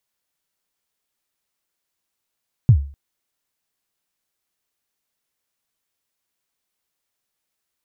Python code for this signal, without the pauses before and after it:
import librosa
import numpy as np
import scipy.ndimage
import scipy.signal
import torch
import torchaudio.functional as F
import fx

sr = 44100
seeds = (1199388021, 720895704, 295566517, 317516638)

y = fx.drum_kick(sr, seeds[0], length_s=0.25, level_db=-4, start_hz=140.0, end_hz=70.0, sweep_ms=79.0, decay_s=0.4, click=False)